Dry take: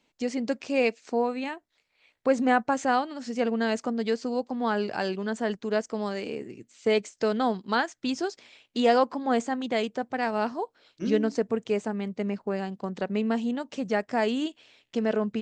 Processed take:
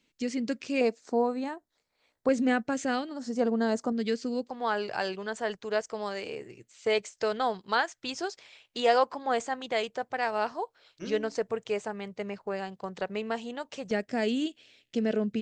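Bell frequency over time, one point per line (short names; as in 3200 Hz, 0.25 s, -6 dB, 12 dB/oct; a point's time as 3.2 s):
bell -12.5 dB 1 oct
770 Hz
from 0.81 s 2600 Hz
from 2.29 s 920 Hz
from 3.09 s 2500 Hz
from 3.92 s 840 Hz
from 4.5 s 240 Hz
from 13.91 s 1000 Hz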